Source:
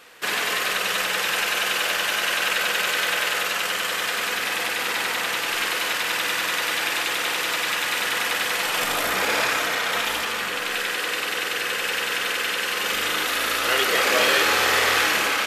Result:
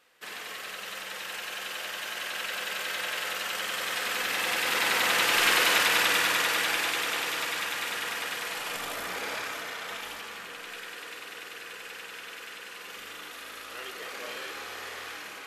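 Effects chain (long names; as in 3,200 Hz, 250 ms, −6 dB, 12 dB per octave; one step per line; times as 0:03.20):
source passing by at 0:05.58, 10 m/s, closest 7.2 metres
level +2 dB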